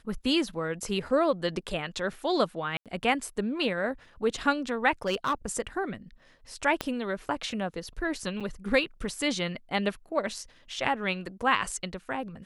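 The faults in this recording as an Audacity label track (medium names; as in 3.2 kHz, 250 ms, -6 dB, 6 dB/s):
2.770000	2.860000	dropout 87 ms
5.060000	5.340000	clipped -22 dBFS
6.810000	6.810000	pop -14 dBFS
8.400000	8.410000	dropout 6.6 ms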